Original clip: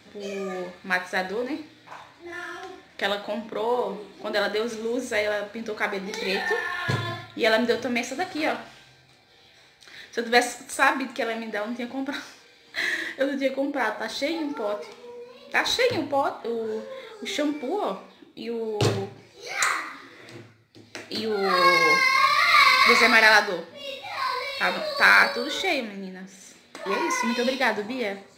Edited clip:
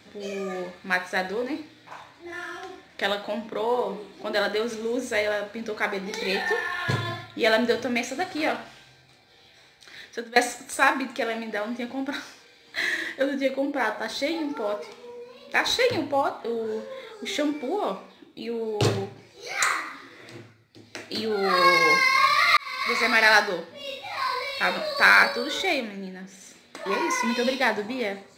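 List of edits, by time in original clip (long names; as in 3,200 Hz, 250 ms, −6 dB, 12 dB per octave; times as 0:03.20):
0:10.04–0:10.36: fade out, to −22 dB
0:22.57–0:23.42: fade in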